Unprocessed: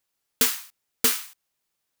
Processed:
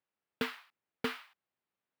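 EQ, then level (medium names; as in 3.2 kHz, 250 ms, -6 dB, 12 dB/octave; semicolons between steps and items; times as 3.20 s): high-pass 110 Hz 12 dB/octave; distance through air 430 m; -3.5 dB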